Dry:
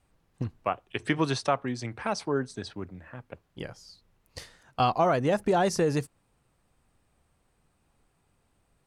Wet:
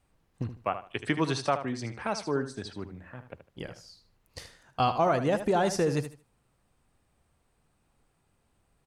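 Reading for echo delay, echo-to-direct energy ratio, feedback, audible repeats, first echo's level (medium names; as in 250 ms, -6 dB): 76 ms, -11.0 dB, 23%, 2, -11.0 dB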